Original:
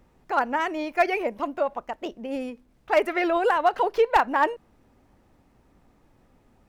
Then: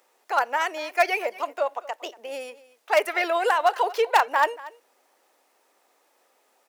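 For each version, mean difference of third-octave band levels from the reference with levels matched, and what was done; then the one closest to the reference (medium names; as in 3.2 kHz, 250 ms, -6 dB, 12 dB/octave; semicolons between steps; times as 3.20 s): 6.5 dB: high-pass 450 Hz 24 dB/octave; treble shelf 3.8 kHz +11.5 dB; on a send: delay 234 ms -19 dB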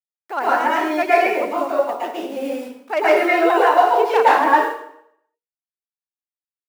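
9.0 dB: send-on-delta sampling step -44 dBFS; high-pass 240 Hz 24 dB/octave; plate-style reverb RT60 0.69 s, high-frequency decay 0.9×, pre-delay 100 ms, DRR -8 dB; trim -1.5 dB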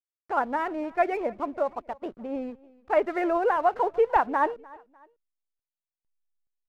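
3.5 dB: low-pass 1.6 kHz 12 dB/octave; hysteresis with a dead band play -43 dBFS; on a send: feedback delay 300 ms, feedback 36%, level -23 dB; on the sum: trim -1.5 dB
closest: third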